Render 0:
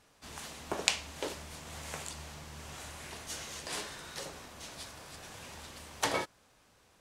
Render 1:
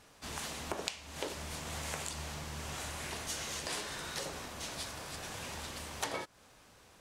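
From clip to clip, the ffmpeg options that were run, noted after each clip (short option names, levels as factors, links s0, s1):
-af "acompressor=threshold=0.01:ratio=6,volume=1.78"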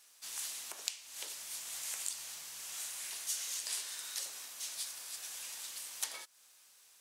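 -af "aderivative,volume=1.58"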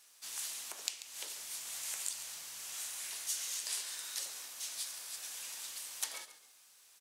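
-filter_complex "[0:a]asplit=4[s0][s1][s2][s3];[s1]adelay=138,afreqshift=-52,volume=0.224[s4];[s2]adelay=276,afreqshift=-104,volume=0.0668[s5];[s3]adelay=414,afreqshift=-156,volume=0.0202[s6];[s0][s4][s5][s6]amix=inputs=4:normalize=0"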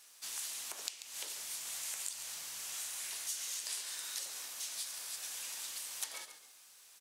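-af "acompressor=threshold=0.00708:ratio=2,volume=1.41"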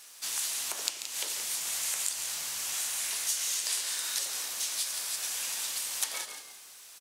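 -filter_complex "[0:a]asplit=5[s0][s1][s2][s3][s4];[s1]adelay=173,afreqshift=-62,volume=0.299[s5];[s2]adelay=346,afreqshift=-124,volume=0.101[s6];[s3]adelay=519,afreqshift=-186,volume=0.0347[s7];[s4]adelay=692,afreqshift=-248,volume=0.0117[s8];[s0][s5][s6][s7][s8]amix=inputs=5:normalize=0,volume=2.66"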